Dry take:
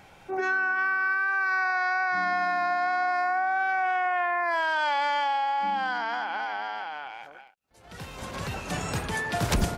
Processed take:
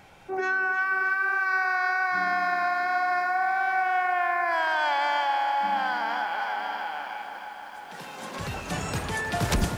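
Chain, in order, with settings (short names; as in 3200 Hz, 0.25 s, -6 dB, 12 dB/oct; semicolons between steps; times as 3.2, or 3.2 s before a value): 5.93–8.39 HPF 180 Hz 24 dB/oct; lo-fi delay 0.312 s, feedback 80%, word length 9-bit, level -11 dB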